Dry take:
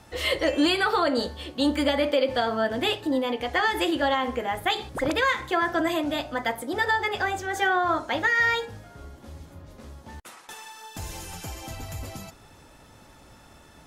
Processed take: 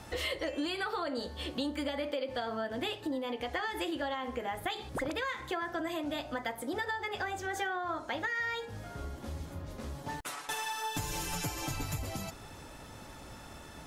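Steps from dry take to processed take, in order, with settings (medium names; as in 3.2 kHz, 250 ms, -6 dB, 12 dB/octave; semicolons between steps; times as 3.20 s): compression 5:1, threshold -37 dBFS, peak gain reduction 17 dB; 9.94–11.98 s: comb 6.9 ms, depth 84%; trim +3 dB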